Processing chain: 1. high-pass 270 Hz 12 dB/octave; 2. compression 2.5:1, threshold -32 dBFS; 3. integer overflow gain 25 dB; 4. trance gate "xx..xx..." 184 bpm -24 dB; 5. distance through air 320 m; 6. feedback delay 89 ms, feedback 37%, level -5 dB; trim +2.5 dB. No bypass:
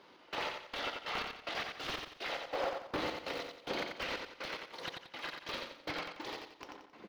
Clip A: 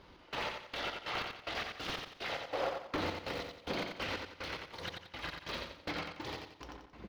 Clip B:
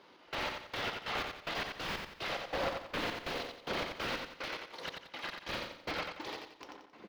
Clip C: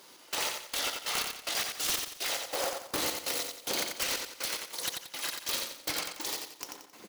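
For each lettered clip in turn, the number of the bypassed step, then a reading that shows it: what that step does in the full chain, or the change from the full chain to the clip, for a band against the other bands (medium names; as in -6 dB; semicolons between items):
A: 1, 125 Hz band +6.5 dB; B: 2, 125 Hz band +4.0 dB; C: 5, 8 kHz band +22.0 dB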